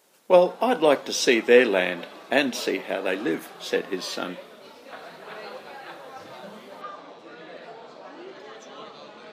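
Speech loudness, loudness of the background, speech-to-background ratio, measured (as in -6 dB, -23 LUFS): -22.5 LUFS, -42.0 LUFS, 19.5 dB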